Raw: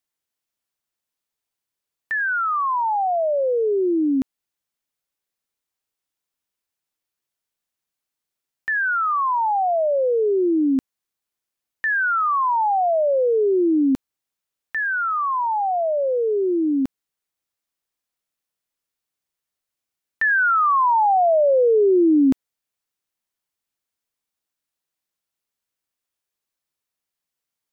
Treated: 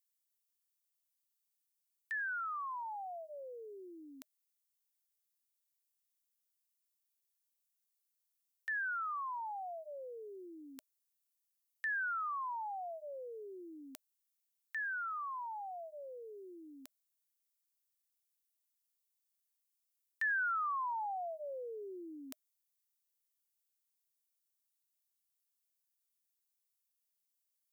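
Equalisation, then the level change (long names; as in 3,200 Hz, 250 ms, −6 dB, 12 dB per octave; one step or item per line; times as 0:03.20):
first difference
low-shelf EQ 270 Hz −9 dB
notch filter 620 Hz, Q 16
−2.5 dB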